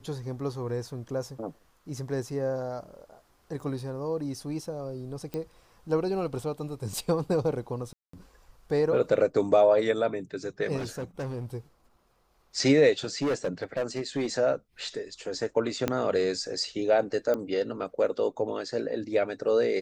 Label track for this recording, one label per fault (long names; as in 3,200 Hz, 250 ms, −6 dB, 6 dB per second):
5.340000	5.340000	click −20 dBFS
7.930000	8.130000	drop-out 204 ms
10.770000	11.450000	clipping −30 dBFS
12.990000	14.270000	clipping −23.5 dBFS
15.880000	15.880000	click −12 dBFS
17.340000	17.340000	click −18 dBFS